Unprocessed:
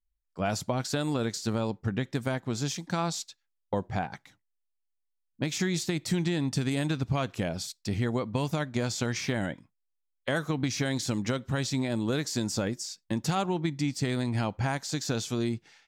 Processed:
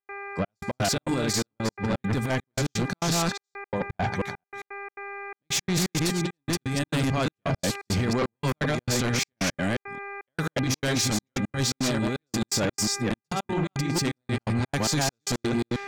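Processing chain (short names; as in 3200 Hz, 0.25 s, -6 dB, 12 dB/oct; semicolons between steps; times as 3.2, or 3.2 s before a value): reverse delay 0.222 s, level -2.5 dB; 7.02–8.22 low shelf 110 Hz -4 dB; negative-ratio compressor -29 dBFS, ratio -0.5; buzz 400 Hz, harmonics 6, -45 dBFS -1 dB/oct; step gate ".xxxx..x.xx" 169 bpm -60 dB; sine folder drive 9 dB, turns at -15 dBFS; gain -5 dB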